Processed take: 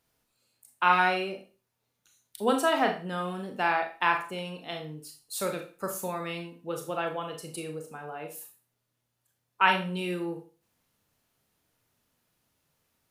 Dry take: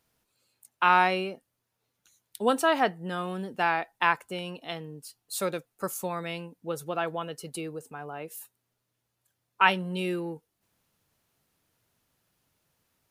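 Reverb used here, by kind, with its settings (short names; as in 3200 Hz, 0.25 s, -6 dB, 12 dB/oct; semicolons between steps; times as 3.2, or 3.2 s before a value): Schroeder reverb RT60 0.36 s, combs from 26 ms, DRR 3.5 dB; gain -2 dB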